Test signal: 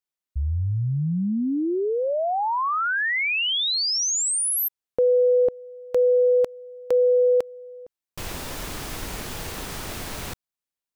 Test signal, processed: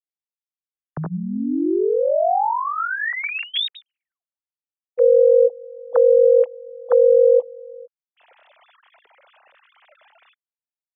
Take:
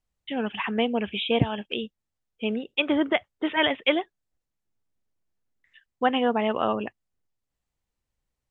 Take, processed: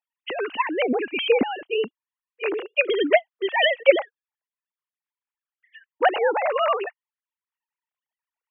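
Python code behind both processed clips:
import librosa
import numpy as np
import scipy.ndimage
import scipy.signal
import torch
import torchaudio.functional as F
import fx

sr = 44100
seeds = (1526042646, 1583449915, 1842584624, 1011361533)

y = fx.sine_speech(x, sr)
y = y * 10.0 ** (3.5 / 20.0)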